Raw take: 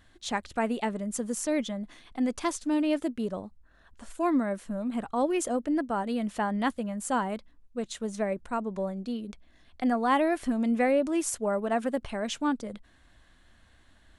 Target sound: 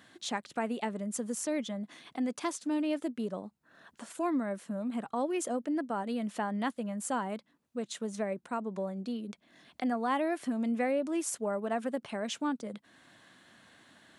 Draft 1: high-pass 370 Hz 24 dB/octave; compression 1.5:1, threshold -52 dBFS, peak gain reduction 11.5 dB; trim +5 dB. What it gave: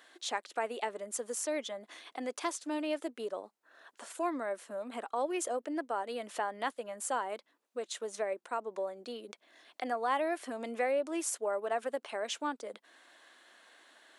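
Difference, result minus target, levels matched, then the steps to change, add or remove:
125 Hz band -16.5 dB
change: high-pass 140 Hz 24 dB/octave

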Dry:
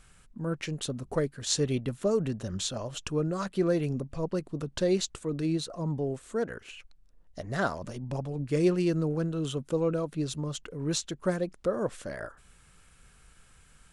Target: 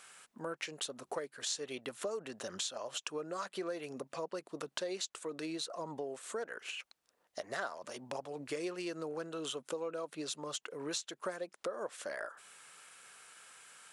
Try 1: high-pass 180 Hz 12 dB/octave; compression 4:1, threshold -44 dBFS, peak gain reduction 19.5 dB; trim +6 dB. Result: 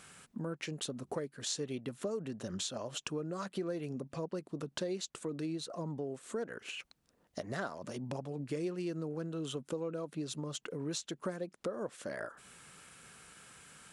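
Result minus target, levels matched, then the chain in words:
250 Hz band +4.5 dB
high-pass 580 Hz 12 dB/octave; compression 4:1, threshold -44 dBFS, peak gain reduction 16.5 dB; trim +6 dB

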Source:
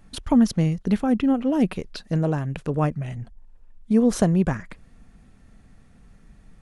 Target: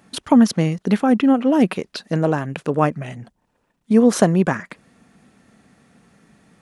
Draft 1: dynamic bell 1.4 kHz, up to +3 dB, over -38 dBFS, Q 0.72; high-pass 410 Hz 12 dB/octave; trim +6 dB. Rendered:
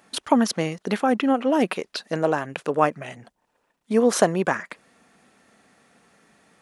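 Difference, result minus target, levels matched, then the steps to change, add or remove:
500 Hz band +3.0 dB
change: high-pass 200 Hz 12 dB/octave

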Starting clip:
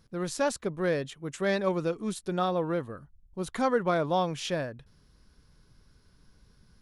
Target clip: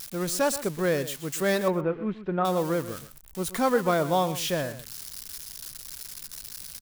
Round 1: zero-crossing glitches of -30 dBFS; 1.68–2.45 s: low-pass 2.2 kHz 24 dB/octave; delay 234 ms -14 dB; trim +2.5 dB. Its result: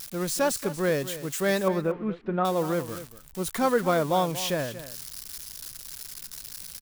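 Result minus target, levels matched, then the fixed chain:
echo 109 ms late
zero-crossing glitches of -30 dBFS; 1.68–2.45 s: low-pass 2.2 kHz 24 dB/octave; delay 125 ms -14 dB; trim +2.5 dB

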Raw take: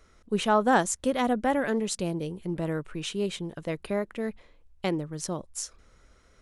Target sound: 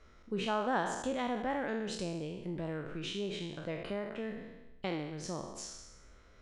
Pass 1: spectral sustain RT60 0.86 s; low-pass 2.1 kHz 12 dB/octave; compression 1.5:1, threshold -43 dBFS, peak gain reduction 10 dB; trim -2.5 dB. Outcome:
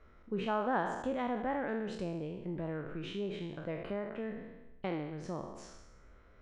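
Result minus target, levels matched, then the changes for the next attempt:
4 kHz band -7.0 dB
change: low-pass 4.8 kHz 12 dB/octave

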